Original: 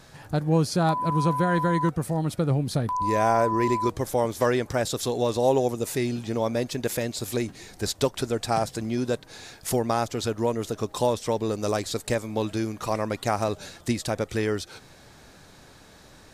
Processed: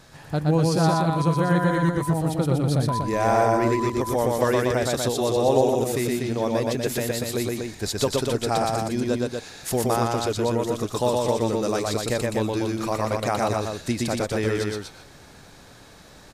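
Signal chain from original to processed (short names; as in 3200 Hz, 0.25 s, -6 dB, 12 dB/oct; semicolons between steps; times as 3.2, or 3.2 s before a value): loudspeakers at several distances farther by 41 m -2 dB, 83 m -5 dB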